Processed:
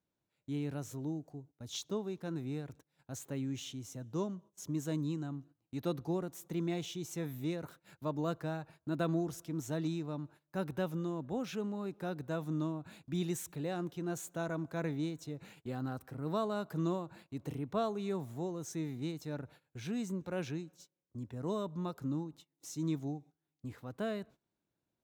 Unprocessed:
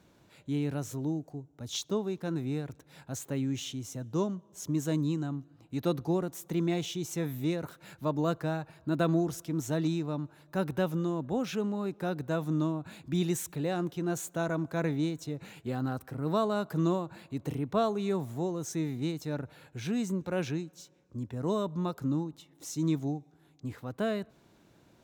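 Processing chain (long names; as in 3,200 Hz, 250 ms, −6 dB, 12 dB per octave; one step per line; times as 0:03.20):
noise gate −49 dBFS, range −20 dB
level −6 dB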